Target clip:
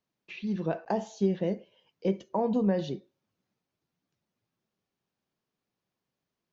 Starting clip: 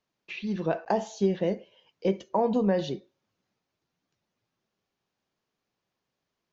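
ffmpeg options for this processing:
ffmpeg -i in.wav -af "equalizer=frequency=170:width=0.58:gain=5,volume=-5dB" out.wav

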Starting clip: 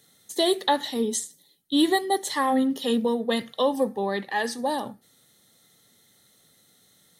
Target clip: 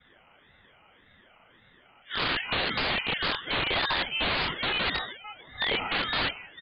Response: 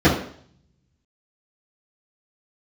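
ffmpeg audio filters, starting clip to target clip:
-filter_complex "[0:a]areverse,highpass=430,acompressor=threshold=-35dB:ratio=3,lowpass=frequency=2500:width_type=q:width=0.5098,lowpass=frequency=2500:width_type=q:width=0.6013,lowpass=frequency=2500:width_type=q:width=0.9,lowpass=frequency=2500:width_type=q:width=2.563,afreqshift=-2900,asplit=2[link_01][link_02];[link_02]adelay=39,volume=-3dB[link_03];[link_01][link_03]amix=inputs=2:normalize=0,asplit=2[link_04][link_05];[link_05]adelay=484,volume=-18dB,highshelf=frequency=4000:gain=-10.9[link_06];[link_04][link_06]amix=inputs=2:normalize=0[link_07];[1:a]atrim=start_sample=2205,asetrate=61740,aresample=44100[link_08];[link_07][link_08]afir=irnorm=-1:irlink=0,asetrate=48000,aresample=44100,aresample=8000,aeval=exprs='(mod(3.55*val(0)+1,2)-1)/3.55':channel_layout=same,aresample=44100,aeval=exprs='val(0)*sin(2*PI*610*n/s+610*0.65/1.8*sin(2*PI*1.8*n/s))':channel_layout=same,volume=-8.5dB"

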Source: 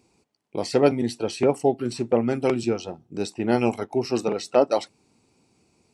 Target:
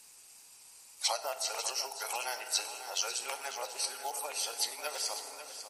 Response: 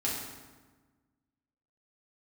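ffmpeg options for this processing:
-filter_complex "[0:a]areverse,asplit=2[link_01][link_02];[1:a]atrim=start_sample=2205[link_03];[link_02][link_03]afir=irnorm=-1:irlink=0,volume=-12dB[link_04];[link_01][link_04]amix=inputs=2:normalize=0,acompressor=threshold=-27dB:ratio=5,highpass=frequency=720:width=0.5412,highpass=frequency=720:width=1.3066,acrossover=split=6200[link_05][link_06];[link_06]acompressor=threshold=-53dB:ratio=4:attack=1:release=60[link_07];[link_05][link_07]amix=inputs=2:normalize=0,acrusher=bits=7:mode=log:mix=0:aa=0.000001,highshelf=frequency=4900:gain=8.5,asetrate=45938,aresample=44100,aemphasis=mode=production:type=50fm,aecho=1:1:546|1092|1638|2184|2730:0.282|0.144|0.0733|0.0374|0.0191,acrusher=bits=8:mix=0:aa=0.5" -ar 48000 -c:a libmp3lame -b:a 56k

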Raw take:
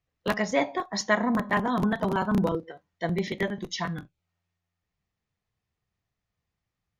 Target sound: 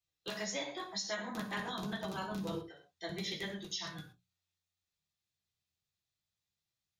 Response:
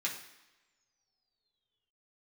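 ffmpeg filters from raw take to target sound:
-filter_complex "[0:a]equalizer=frequency=125:width_type=o:width=1:gain=-6,equalizer=frequency=250:width_type=o:width=1:gain=-12,equalizer=frequency=500:width_type=o:width=1:gain=-5,equalizer=frequency=1000:width_type=o:width=1:gain=-9,equalizer=frequency=2000:width_type=o:width=1:gain=-11,equalizer=frequency=4000:width_type=o:width=1:gain=4[link_01];[1:a]atrim=start_sample=2205,atrim=end_sample=6174[link_02];[link_01][link_02]afir=irnorm=-1:irlink=0,alimiter=level_in=1.5dB:limit=-24dB:level=0:latency=1:release=163,volume=-1.5dB,bandreject=frequency=60:width_type=h:width=6,bandreject=frequency=120:width_type=h:width=6,bandreject=frequency=180:width_type=h:width=6,volume=-2dB"

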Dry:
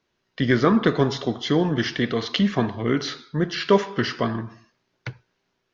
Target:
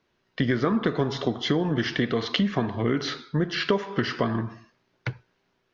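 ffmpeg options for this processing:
ffmpeg -i in.wav -af "highshelf=frequency=6200:gain=-10.5,acompressor=threshold=-23dB:ratio=6,volume=3dB" out.wav

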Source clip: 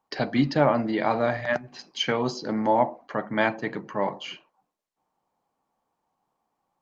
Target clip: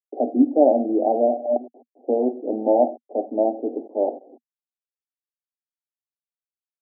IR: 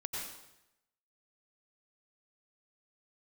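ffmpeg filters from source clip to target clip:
-af "acrusher=bits=6:mix=0:aa=0.000001,asuperpass=centerf=430:order=20:qfactor=0.79,volume=6.5dB"

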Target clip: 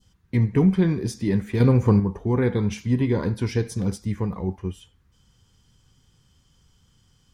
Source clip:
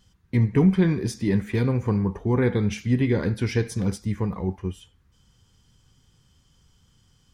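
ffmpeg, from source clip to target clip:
ffmpeg -i in.wav -filter_complex "[0:a]adynamicequalizer=threshold=0.00501:dfrequency=2000:dqfactor=1:tfrequency=2000:tqfactor=1:attack=5:release=100:ratio=0.375:range=2.5:mode=cutabove:tftype=bell,asettb=1/sr,asplit=3[link_01][link_02][link_03];[link_01]atrim=end=1.604[link_04];[link_02]atrim=start=1.6:end=2,asetpts=PTS-STARTPTS,afade=type=in:duration=0.004:curve=qsin,afade=type=out:start_time=0.396:duration=0.004:curve=qsin,acontrast=66[link_05];[link_03]atrim=start=1.996[link_06];[link_04][link_05]acrossfade=duration=0.004:curve1=hsin:curve2=qsin[link_07];[link_07][link_06]acrossfade=duration=0.004:curve1=qsin:curve2=hsin,asettb=1/sr,asplit=3[link_08][link_09][link_10];[link_08]atrim=end=2.584[link_11];[link_09]atrim=start=2.58:end=3.5,asetpts=PTS-STARTPTS,afade=type=in:duration=0.004:curve=qsin,afade=type=out:start_time=0.916:duration=0.004:curve=qsin,equalizer=frequency=990:width_type=o:width=0.22:gain=11.5[link_12];[link_10]atrim=start=3.496[link_13];[link_11][link_12]acrossfade=duration=0.004:curve1=hsin:curve2=qsin[link_14];[link_14][link_13]acrossfade=duration=0.004:curve1=qsin:curve2=hsin" out.wav

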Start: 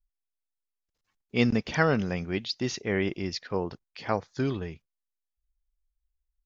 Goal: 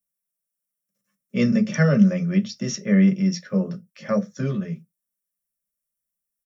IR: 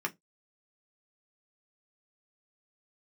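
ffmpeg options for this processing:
-filter_complex "[0:a]firequalizer=gain_entry='entry(100,0);entry(210,7);entry(310,-17);entry(540,5);entry(880,-20);entry(1300,-6);entry(2600,-10);entry(8800,13)':delay=0.05:min_phase=1[link_01];[1:a]atrim=start_sample=2205[link_02];[link_01][link_02]afir=irnorm=-1:irlink=0,volume=3dB"

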